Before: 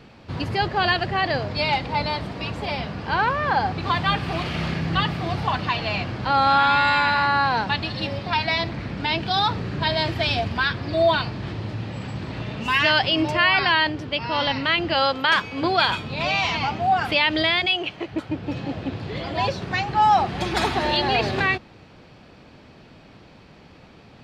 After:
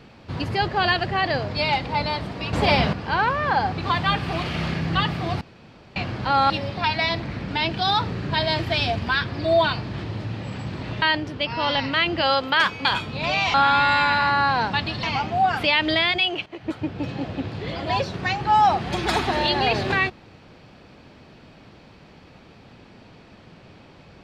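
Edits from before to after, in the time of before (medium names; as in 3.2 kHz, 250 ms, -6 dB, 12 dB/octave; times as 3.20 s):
2.53–2.93 s: gain +9 dB
5.41–5.96 s: room tone
6.50–7.99 s: move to 16.51 s
12.51–13.74 s: delete
15.57–15.82 s: delete
17.94–18.21 s: fade in, from -14 dB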